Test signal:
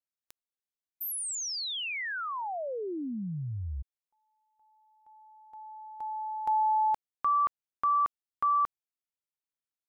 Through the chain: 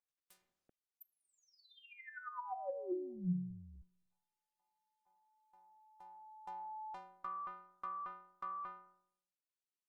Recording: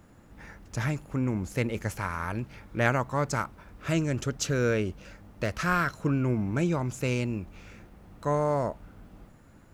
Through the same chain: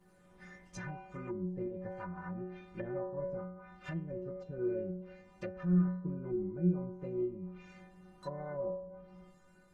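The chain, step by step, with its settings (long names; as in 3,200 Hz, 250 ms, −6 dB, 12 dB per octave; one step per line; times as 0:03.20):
stiff-string resonator 180 Hz, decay 0.81 s, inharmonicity 0.008
treble cut that deepens with the level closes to 450 Hz, closed at −46 dBFS
level +11.5 dB
Opus 20 kbit/s 48,000 Hz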